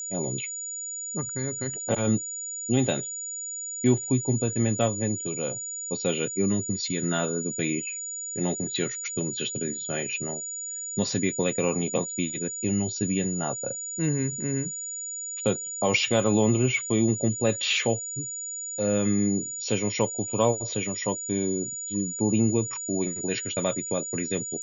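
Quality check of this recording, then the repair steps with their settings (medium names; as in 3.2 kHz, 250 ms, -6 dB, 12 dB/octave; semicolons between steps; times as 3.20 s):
whine 6.9 kHz -32 dBFS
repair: band-stop 6.9 kHz, Q 30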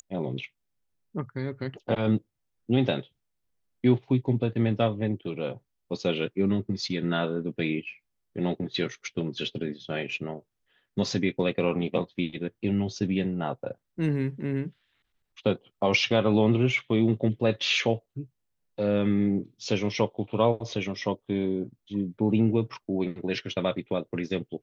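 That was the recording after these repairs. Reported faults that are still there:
nothing left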